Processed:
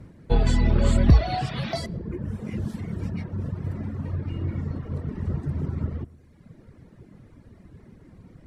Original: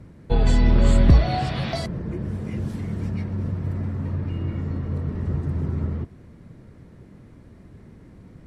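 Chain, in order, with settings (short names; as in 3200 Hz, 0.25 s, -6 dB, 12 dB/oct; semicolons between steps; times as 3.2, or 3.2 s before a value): on a send: darkening echo 0.112 s, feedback 48%, low-pass 3100 Hz, level -13.5 dB; on the sum: reverb removal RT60 1.1 s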